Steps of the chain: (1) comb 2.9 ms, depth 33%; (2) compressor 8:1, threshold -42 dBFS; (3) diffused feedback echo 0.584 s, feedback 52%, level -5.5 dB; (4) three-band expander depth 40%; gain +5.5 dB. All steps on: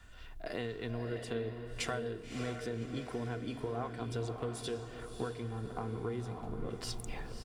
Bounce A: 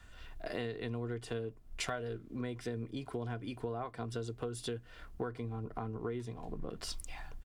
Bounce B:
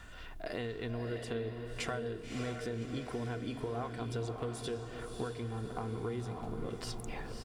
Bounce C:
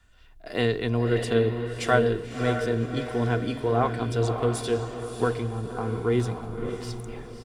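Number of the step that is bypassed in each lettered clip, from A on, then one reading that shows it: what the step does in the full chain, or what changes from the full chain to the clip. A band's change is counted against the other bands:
3, momentary loudness spread change +2 LU; 4, 8 kHz band -2.0 dB; 2, crest factor change +3.0 dB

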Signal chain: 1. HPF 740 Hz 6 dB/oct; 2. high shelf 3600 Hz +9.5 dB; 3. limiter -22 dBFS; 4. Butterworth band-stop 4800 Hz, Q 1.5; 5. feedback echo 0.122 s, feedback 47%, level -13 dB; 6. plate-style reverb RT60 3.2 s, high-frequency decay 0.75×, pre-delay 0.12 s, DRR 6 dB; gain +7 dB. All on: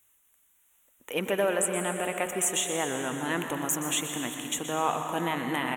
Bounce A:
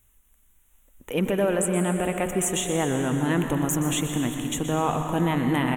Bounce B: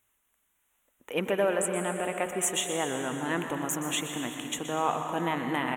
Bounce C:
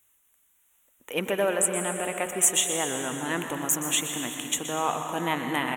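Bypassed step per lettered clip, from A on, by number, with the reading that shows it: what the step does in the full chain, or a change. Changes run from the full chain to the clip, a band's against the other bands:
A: 1, 125 Hz band +12.0 dB; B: 2, 8 kHz band -3.0 dB; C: 3, crest factor change +4.5 dB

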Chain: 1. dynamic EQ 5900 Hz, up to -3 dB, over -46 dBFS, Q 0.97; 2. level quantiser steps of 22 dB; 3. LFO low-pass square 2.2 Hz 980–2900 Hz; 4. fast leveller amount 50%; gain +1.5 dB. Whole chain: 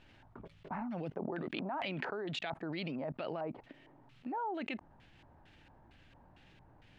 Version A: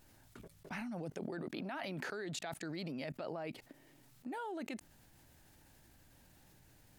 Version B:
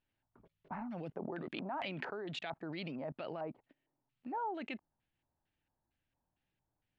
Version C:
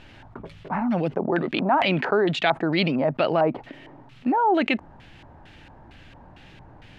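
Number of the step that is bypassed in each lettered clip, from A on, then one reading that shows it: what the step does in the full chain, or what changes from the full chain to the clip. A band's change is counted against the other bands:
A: 3, 1 kHz band -3.5 dB; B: 4, momentary loudness spread change -10 LU; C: 2, momentary loudness spread change -6 LU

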